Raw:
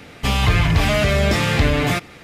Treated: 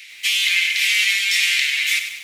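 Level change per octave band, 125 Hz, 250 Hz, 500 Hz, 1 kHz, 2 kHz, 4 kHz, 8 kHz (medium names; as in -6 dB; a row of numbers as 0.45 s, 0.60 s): under -40 dB, under -40 dB, under -40 dB, under -20 dB, +5.5 dB, +7.5 dB, +8.0 dB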